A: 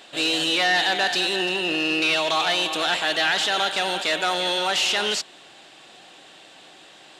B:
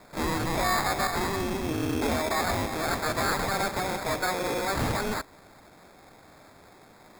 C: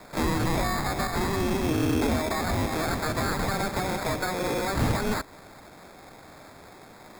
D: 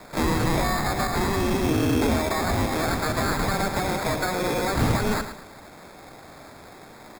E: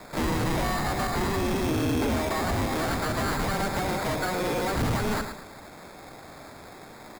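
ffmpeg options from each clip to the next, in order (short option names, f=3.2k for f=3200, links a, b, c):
-af "acrusher=samples=15:mix=1:aa=0.000001,volume=-5dB"
-filter_complex "[0:a]acrossover=split=310[a][b];[b]acompressor=threshold=-31dB:ratio=6[c];[a][c]amix=inputs=2:normalize=0,volume=5dB"
-af "aecho=1:1:110|220|330|440:0.316|0.101|0.0324|0.0104,volume=2.5dB"
-af "asoftclip=type=tanh:threshold=-21dB"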